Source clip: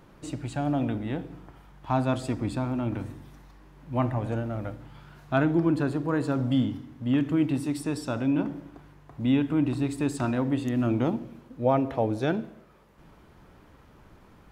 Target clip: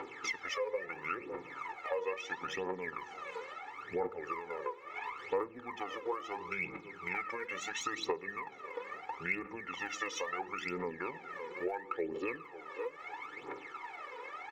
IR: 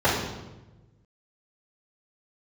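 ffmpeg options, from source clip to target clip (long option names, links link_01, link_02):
-filter_complex "[0:a]highpass=frequency=400:width=0.5412,highpass=frequency=400:width=1.3066,equalizer=frequency=450:width_type=q:width=4:gain=-3,equalizer=frequency=780:width_type=q:width=4:gain=-3,equalizer=frequency=1600:width_type=q:width=4:gain=10,equalizer=frequency=2900:width_type=q:width=4:gain=9,equalizer=frequency=6400:width_type=q:width=4:gain=-6,lowpass=frequency=8600:width=0.5412,lowpass=frequency=8600:width=1.3066,asplit=2[link_01][link_02];[link_02]adelay=548,lowpass=frequency=3500:poles=1,volume=-21dB,asplit=2[link_03][link_04];[link_04]adelay=548,lowpass=frequency=3500:poles=1,volume=0.17[link_05];[link_01][link_03][link_05]amix=inputs=3:normalize=0,asetrate=32097,aresample=44100,atempo=1.37395,aphaser=in_gain=1:out_gain=1:delay=2.1:decay=0.8:speed=0.74:type=triangular,acompressor=threshold=-45dB:ratio=4,equalizer=frequency=2200:width=2:gain=4.5,aecho=1:1:2.3:0.98,volume=4.5dB"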